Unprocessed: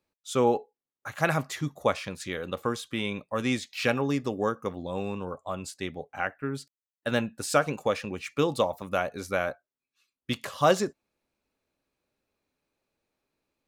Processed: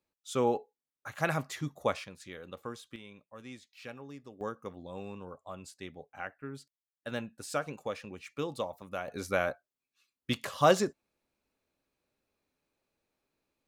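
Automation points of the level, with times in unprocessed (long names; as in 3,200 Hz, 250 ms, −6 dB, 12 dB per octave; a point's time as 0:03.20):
−5 dB
from 0:02.04 −12 dB
from 0:02.96 −19.5 dB
from 0:04.41 −10 dB
from 0:09.08 −1.5 dB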